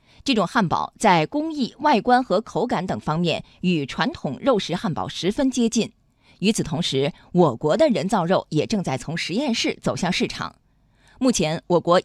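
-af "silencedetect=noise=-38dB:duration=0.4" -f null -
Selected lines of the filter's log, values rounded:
silence_start: 5.87
silence_end: 6.42 | silence_duration: 0.54
silence_start: 10.51
silence_end: 11.21 | silence_duration: 0.70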